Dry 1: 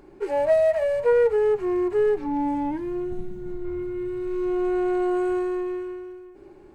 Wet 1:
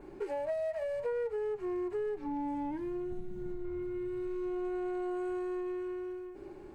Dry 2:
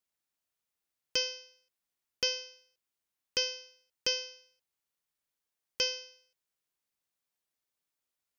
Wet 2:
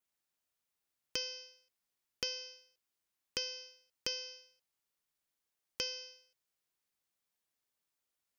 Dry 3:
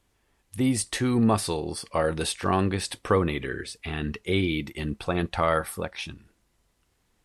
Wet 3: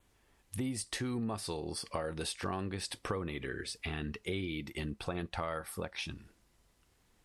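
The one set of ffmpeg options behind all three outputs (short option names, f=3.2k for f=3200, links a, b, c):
-af "adynamicequalizer=threshold=0.00398:dfrequency=5000:dqfactor=4.2:tfrequency=5000:tqfactor=4.2:attack=5:release=100:ratio=0.375:range=2:mode=boostabove:tftype=bell,acompressor=threshold=-36dB:ratio=4"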